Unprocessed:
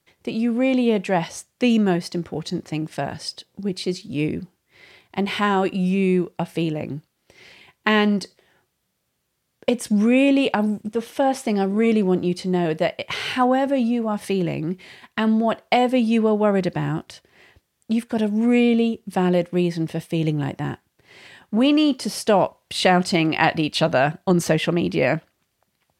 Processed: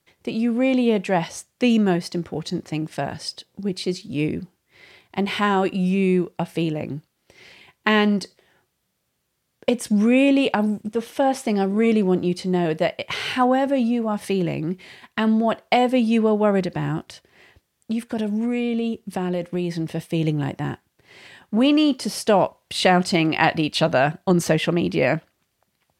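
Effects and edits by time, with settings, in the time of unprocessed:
0:16.61–0:19.99: downward compressor, threshold −20 dBFS

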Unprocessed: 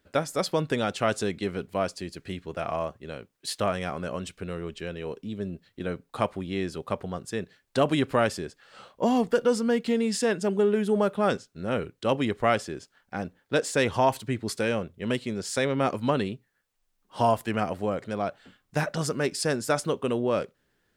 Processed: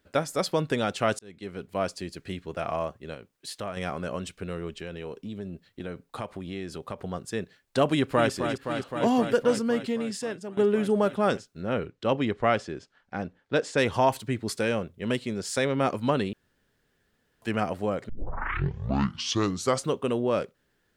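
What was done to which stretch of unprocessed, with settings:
0:01.19–0:01.88: fade in
0:03.14–0:03.77: downward compressor 1.5 to 1, threshold −44 dBFS
0:04.81–0:06.99: downward compressor 3 to 1, threshold −32 dBFS
0:07.89–0:08.31: delay throw 260 ms, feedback 85%, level −7.5 dB
0:09.43–0:10.57: fade out, to −14 dB
0:11.62–0:13.78: high-frequency loss of the air 87 metres
0:16.33–0:17.42: fill with room tone
0:18.09: tape start 1.86 s

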